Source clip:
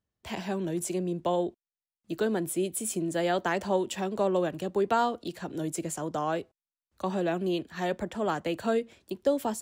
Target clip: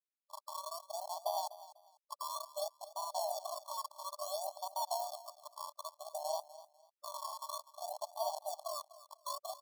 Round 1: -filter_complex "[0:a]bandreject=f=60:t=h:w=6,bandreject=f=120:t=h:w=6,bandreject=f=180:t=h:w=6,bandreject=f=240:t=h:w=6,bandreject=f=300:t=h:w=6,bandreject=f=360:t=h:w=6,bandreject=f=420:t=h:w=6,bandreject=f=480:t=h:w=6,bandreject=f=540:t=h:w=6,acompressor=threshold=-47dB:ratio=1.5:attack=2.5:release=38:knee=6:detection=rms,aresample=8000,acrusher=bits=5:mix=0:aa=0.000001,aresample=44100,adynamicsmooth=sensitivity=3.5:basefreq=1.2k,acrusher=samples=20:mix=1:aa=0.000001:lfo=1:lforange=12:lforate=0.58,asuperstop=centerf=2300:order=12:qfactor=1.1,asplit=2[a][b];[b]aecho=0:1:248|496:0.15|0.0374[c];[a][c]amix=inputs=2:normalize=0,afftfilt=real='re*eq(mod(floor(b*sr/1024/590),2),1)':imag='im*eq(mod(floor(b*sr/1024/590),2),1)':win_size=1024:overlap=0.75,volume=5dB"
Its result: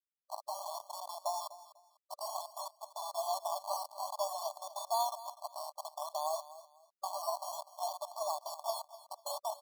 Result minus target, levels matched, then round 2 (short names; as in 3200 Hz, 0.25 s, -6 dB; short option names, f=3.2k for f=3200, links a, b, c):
decimation with a swept rate: distortion -12 dB
-filter_complex "[0:a]bandreject=f=60:t=h:w=6,bandreject=f=120:t=h:w=6,bandreject=f=180:t=h:w=6,bandreject=f=240:t=h:w=6,bandreject=f=300:t=h:w=6,bandreject=f=360:t=h:w=6,bandreject=f=420:t=h:w=6,bandreject=f=480:t=h:w=6,bandreject=f=540:t=h:w=6,acompressor=threshold=-47dB:ratio=1.5:attack=2.5:release=38:knee=6:detection=rms,aresample=8000,acrusher=bits=5:mix=0:aa=0.000001,aresample=44100,adynamicsmooth=sensitivity=3.5:basefreq=1.2k,acrusher=samples=47:mix=1:aa=0.000001:lfo=1:lforange=28.2:lforate=0.58,asuperstop=centerf=2300:order=12:qfactor=1.1,asplit=2[a][b];[b]aecho=0:1:248|496:0.15|0.0374[c];[a][c]amix=inputs=2:normalize=0,afftfilt=real='re*eq(mod(floor(b*sr/1024/590),2),1)':imag='im*eq(mod(floor(b*sr/1024/590),2),1)':win_size=1024:overlap=0.75,volume=5dB"